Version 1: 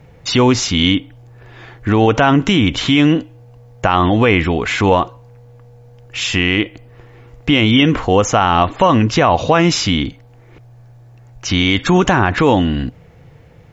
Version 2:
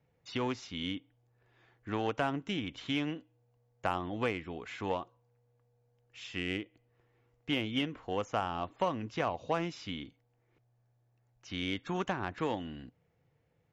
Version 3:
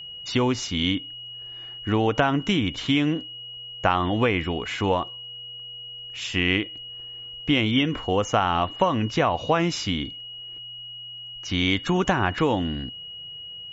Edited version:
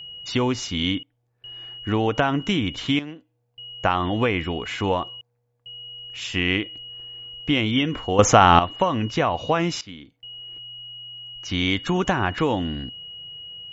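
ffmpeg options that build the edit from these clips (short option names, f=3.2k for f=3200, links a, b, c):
-filter_complex "[1:a]asplit=4[a][b][c][d];[2:a]asplit=6[e][f][g][h][i][j];[e]atrim=end=1.032[k];[a]atrim=start=1.028:end=1.442[l];[f]atrim=start=1.438:end=2.992[m];[b]atrim=start=2.988:end=3.582[n];[g]atrim=start=3.578:end=5.212[o];[c]atrim=start=5.208:end=5.662[p];[h]atrim=start=5.658:end=8.192[q];[0:a]atrim=start=8.188:end=8.592[r];[i]atrim=start=8.588:end=9.812[s];[d]atrim=start=9.808:end=10.232[t];[j]atrim=start=10.228[u];[k][l]acrossfade=d=0.004:c1=hsin:c2=hsin[v];[v][m]acrossfade=d=0.004:c1=hsin:c2=hsin[w];[w][n]acrossfade=d=0.004:c1=hsin:c2=hsin[x];[x][o]acrossfade=d=0.004:c1=hsin:c2=hsin[y];[y][p]acrossfade=d=0.004:c1=hsin:c2=hsin[z];[z][q]acrossfade=d=0.004:c1=hsin:c2=hsin[aa];[aa][r]acrossfade=d=0.004:c1=hsin:c2=hsin[ab];[ab][s]acrossfade=d=0.004:c1=hsin:c2=hsin[ac];[ac][t]acrossfade=d=0.004:c1=hsin:c2=hsin[ad];[ad][u]acrossfade=d=0.004:c1=hsin:c2=hsin"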